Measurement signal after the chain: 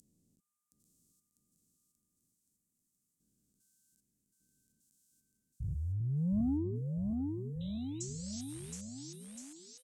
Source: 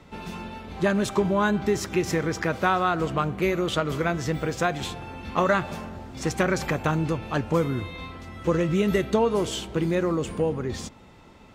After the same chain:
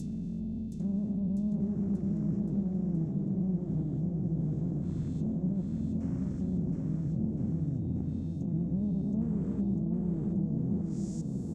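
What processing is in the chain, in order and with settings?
spectrogram pixelated in time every 400 ms; Chebyshev band-stop 220–7500 Hz, order 3; reverse; compression 12:1, threshold -38 dBFS; reverse; overdrive pedal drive 20 dB, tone 3.3 kHz, clips at -29 dBFS; low-pass that closes with the level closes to 1 kHz, closed at -36 dBFS; on a send: bouncing-ball echo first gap 720 ms, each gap 0.9×, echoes 5; on the sum: trim +6.5 dB

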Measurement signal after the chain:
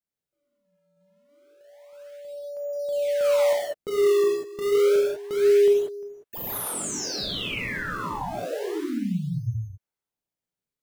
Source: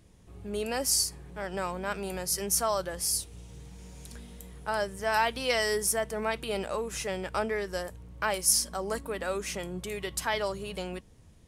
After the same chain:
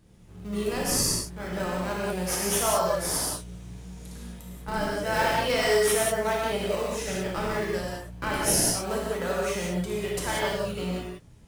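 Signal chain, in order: in parallel at -4.5 dB: decimation with a swept rate 33×, swing 160% 0.29 Hz; on the sum: gated-style reverb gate 220 ms flat, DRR -4.5 dB; trim -4.5 dB

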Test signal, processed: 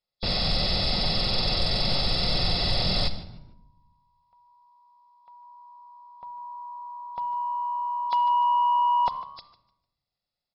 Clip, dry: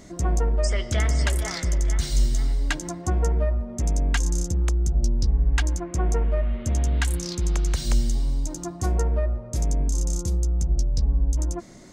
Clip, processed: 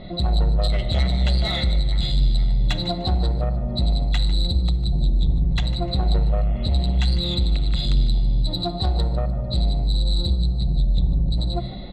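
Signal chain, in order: knee-point frequency compression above 3.3 kHz 4:1; peaking EQ 1.5 kHz -10 dB 0.75 oct; comb 1.5 ms, depth 50%; in parallel at +2 dB: compression, threshold -28 dBFS; on the sum: saturation -16 dBFS; on a send: frequency-shifting echo 150 ms, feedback 31%, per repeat +71 Hz, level -16 dB; on the sum: level-controlled noise filter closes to 2.2 kHz, open at -19.5 dBFS; simulated room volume 2700 m³, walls furnished, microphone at 0.95 m; trim +1 dB

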